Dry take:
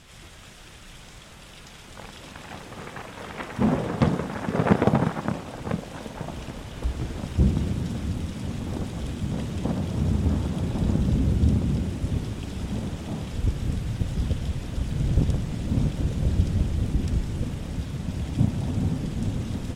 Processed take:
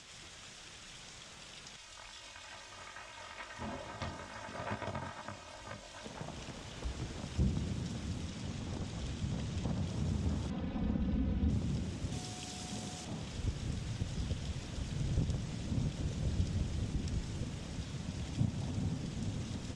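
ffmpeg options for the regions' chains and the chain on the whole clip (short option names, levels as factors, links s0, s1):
-filter_complex "[0:a]asettb=1/sr,asplit=3[s0][s1][s2];[s0]atrim=end=1.764[s3];[s1]atrim=start=1.76:end=6.04,asetpts=PTS-STARTPTS,afade=t=in:d=0.004:c=qsin,afade=t=out:st=4.276:d=0.004:c=qsin,equalizer=f=280:t=o:w=1.4:g=-12,flanger=delay=18:depth=5.5:speed=2.3,aecho=1:1:3.2:0.67,atrim=end_sample=188748[s4];[s2]atrim=start=6.036[s5];[s3][s4]acrossfade=d=0.004:c1=hsin:c2=qsin[s6];[s6][s5]acrossfade=d=0.004:c1=qsin:c2=hsin,asettb=1/sr,asplit=3[s7][s8][s9];[s7]atrim=end=8.264[s10];[s8]atrim=start=8.26:end=9.87,asetpts=PTS-STARTPTS,afade=t=in:d=0.004:c=qsin,afade=t=out:st=1.606:d=0.004:c=qsin,lowpass=9500,asubboost=boost=2.5:cutoff=190[s11];[s9]atrim=start=9.866[s12];[s10][s11]acrossfade=d=0.004:c1=hsin:c2=qsin[s13];[s13][s12]acrossfade=d=0.004:c1=qsin:c2=hsin,asettb=1/sr,asplit=3[s14][s15][s16];[s14]atrim=end=10.504[s17];[s15]atrim=start=10.5:end=11.5,asetpts=PTS-STARTPTS,afade=t=in:d=0.004:c=qsin,afade=t=out:st=0.996:d=0.004:c=qsin,lowpass=2700,aecho=1:1:4:0.78,atrim=end_sample=44100[s18];[s16]atrim=start=11.496[s19];[s17][s18]acrossfade=d=0.004:c1=hsin:c2=qsin[s20];[s20][s19]acrossfade=d=0.004:c1=qsin:c2=hsin,asettb=1/sr,asplit=3[s21][s22][s23];[s21]atrim=end=12.124[s24];[s22]atrim=start=12.12:end=13.05,asetpts=PTS-STARTPTS,afade=t=in:d=0.004:c=qsin,afade=t=out:st=0.926:d=0.004:c=qsin,highpass=f=130:p=1,highshelf=f=4300:g=11,aeval=exprs='val(0)+0.00708*sin(2*PI*730*n/s)':c=same[s25];[s23]atrim=start=13.046[s26];[s24][s25]acrossfade=d=0.004:c1=hsin:c2=qsin[s27];[s27][s26]acrossfade=d=0.004:c1=qsin:c2=hsin,lowpass=f=7000:w=0.5412,lowpass=f=7000:w=1.3066,aemphasis=mode=production:type=bsi,acrossover=split=160[s28][s29];[s29]acompressor=threshold=0.001:ratio=1.5[s30];[s28][s30]amix=inputs=2:normalize=0"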